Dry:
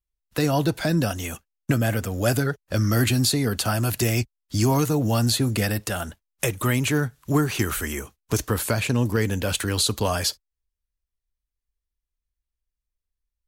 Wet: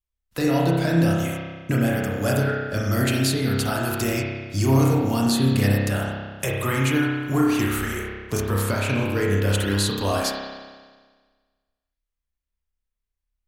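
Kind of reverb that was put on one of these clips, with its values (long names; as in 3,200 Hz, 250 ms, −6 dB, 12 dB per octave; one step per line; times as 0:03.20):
spring reverb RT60 1.5 s, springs 30 ms, chirp 65 ms, DRR −3.5 dB
level −3.5 dB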